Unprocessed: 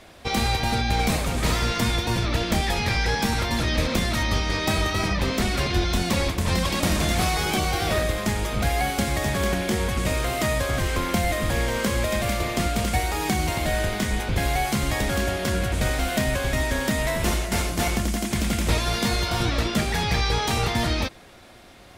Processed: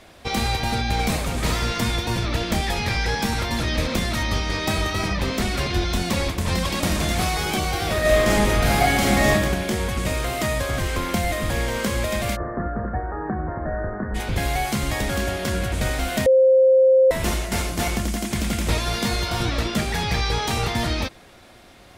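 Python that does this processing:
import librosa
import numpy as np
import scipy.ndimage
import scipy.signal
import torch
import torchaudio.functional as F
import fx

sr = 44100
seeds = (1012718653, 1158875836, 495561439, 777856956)

y = fx.reverb_throw(x, sr, start_s=8.0, length_s=1.31, rt60_s=0.96, drr_db=-6.0)
y = fx.cheby_ripple(y, sr, hz=1800.0, ripple_db=3, at=(12.35, 14.14), fade=0.02)
y = fx.edit(y, sr, fx.bleep(start_s=16.26, length_s=0.85, hz=525.0, db=-11.0), tone=tone)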